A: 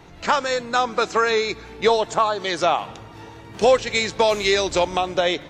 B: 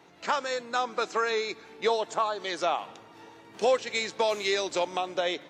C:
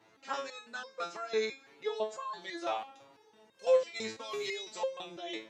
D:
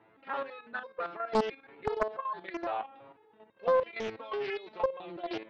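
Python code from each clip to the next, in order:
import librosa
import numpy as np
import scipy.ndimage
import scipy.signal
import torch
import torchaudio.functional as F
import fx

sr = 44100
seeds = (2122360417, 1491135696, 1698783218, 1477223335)

y1 = scipy.signal.sosfilt(scipy.signal.butter(2, 230.0, 'highpass', fs=sr, output='sos'), x)
y1 = F.gain(torch.from_numpy(y1), -8.0).numpy()
y2 = fx.resonator_held(y1, sr, hz=6.0, low_hz=110.0, high_hz=530.0)
y2 = F.gain(torch.from_numpy(y2), 3.5).numpy()
y3 = fx.level_steps(y2, sr, step_db=10)
y3 = scipy.signal.sosfilt(scipy.signal.bessel(8, 1900.0, 'lowpass', norm='mag', fs=sr, output='sos'), y3)
y3 = fx.doppler_dist(y3, sr, depth_ms=0.67)
y3 = F.gain(torch.from_numpy(y3), 8.0).numpy()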